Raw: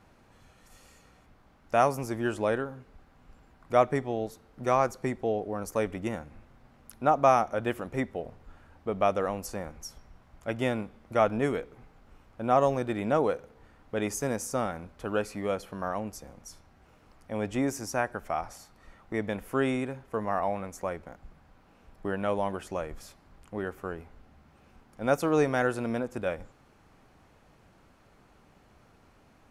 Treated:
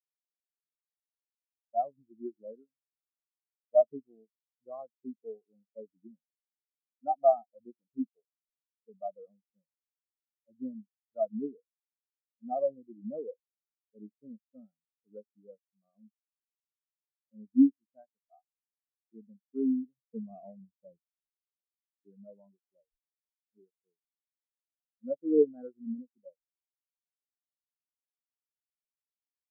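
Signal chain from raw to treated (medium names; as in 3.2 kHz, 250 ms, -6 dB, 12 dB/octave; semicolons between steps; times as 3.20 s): 19.97–21.07 s: square wave that keeps the level; dynamic bell 230 Hz, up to +6 dB, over -41 dBFS, Q 1.1; in parallel at -10 dB: hard clipper -16.5 dBFS, distortion -15 dB; on the sum: spectral contrast expander 4:1; trim -5.5 dB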